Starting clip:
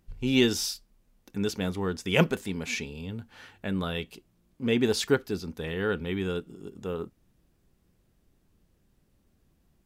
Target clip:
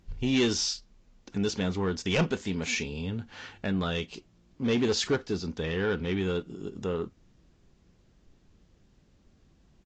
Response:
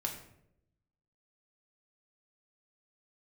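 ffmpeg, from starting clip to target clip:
-filter_complex "[0:a]asplit=2[a][b];[b]acompressor=threshold=-37dB:ratio=6,volume=-1dB[c];[a][c]amix=inputs=2:normalize=0,asoftclip=type=tanh:threshold=-19dB,aresample=16000,aresample=44100" -ar 44100 -c:a libvorbis -b:a 32k

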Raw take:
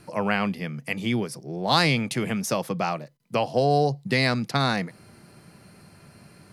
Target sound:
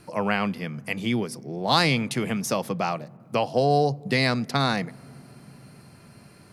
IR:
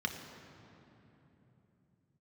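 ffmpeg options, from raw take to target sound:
-filter_complex "[0:a]asplit=2[a][b];[1:a]atrim=start_sample=2205,lowpass=2.1k[c];[b][c]afir=irnorm=-1:irlink=0,volume=-23.5dB[d];[a][d]amix=inputs=2:normalize=0"

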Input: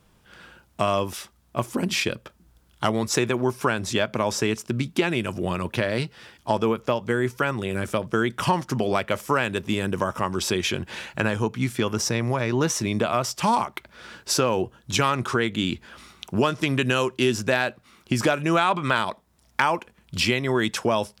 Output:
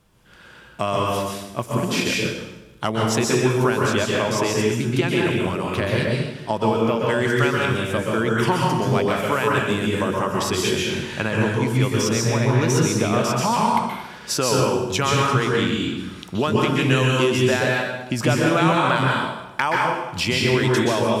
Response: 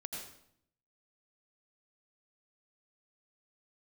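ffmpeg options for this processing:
-filter_complex "[0:a]asettb=1/sr,asplit=3[a][b][c];[a]atrim=end=7.064[d];[b]atrim=start=7.06:end=7.66,asetpts=PTS-STARTPTS,afade=t=in:d=0.004:c=qsin,afade=t=out:st=0.596:d=0.004:c=qsin,equalizer=f=4.3k:t=o:w=2:g=9[e];[c]atrim=start=7.656[f];[d][e]acrossfade=d=0.004:c1=hsin:c2=qsin[g];[g][f]acrossfade=d=0.004:c1=qsin:c2=hsin[h];[1:a]atrim=start_sample=2205,asetrate=28665,aresample=44100[i];[h][i]afir=irnorm=-1:irlink=0,volume=1.5dB"

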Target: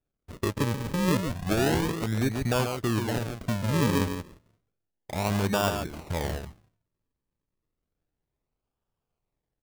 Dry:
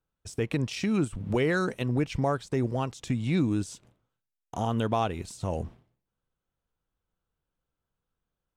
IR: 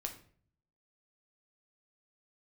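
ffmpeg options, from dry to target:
-af "aecho=1:1:123:0.501,asetrate=39249,aresample=44100,acrusher=samples=42:mix=1:aa=0.000001:lfo=1:lforange=42:lforate=0.31"

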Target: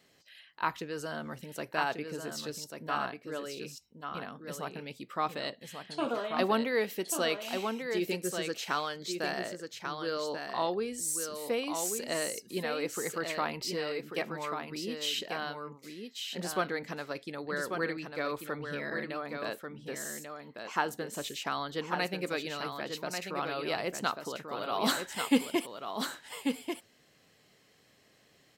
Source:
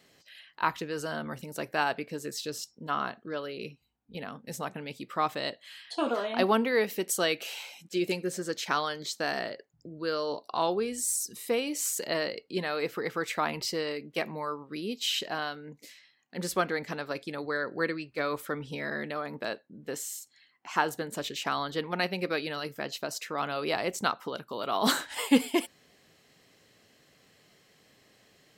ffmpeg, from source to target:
-af "aecho=1:1:1140:0.501,volume=-3.5dB"

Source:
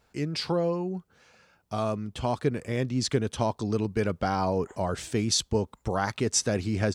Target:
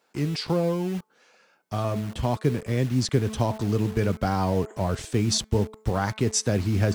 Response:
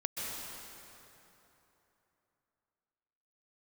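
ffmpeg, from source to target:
-filter_complex "[0:a]lowshelf=f=200:g=8.5,bandreject=f=217.5:t=h:w=4,bandreject=f=435:t=h:w=4,bandreject=f=652.5:t=h:w=4,bandreject=f=870:t=h:w=4,bandreject=f=1.0875k:t=h:w=4,bandreject=f=1.305k:t=h:w=4,bandreject=f=1.5225k:t=h:w=4,bandreject=f=1.74k:t=h:w=4,bandreject=f=1.9575k:t=h:w=4,bandreject=f=2.175k:t=h:w=4,bandreject=f=2.3925k:t=h:w=4,acrossover=split=250|2000[a][b][c];[a]acrusher=bits=6:mix=0:aa=0.000001[d];[d][b][c]amix=inputs=3:normalize=0"

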